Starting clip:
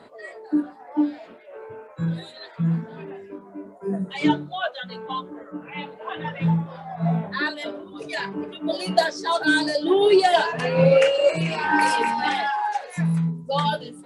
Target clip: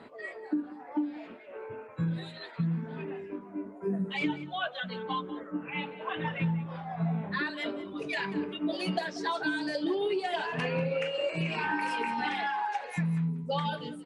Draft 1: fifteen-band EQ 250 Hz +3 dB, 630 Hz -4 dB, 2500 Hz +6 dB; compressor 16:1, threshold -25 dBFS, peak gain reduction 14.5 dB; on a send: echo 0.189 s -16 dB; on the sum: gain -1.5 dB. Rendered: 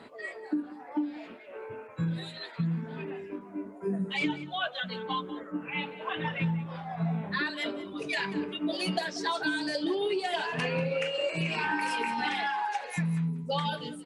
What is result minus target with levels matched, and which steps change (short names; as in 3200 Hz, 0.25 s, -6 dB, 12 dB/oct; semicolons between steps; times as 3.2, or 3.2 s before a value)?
8000 Hz band +6.0 dB
add after compressor: high shelf 3700 Hz -8.5 dB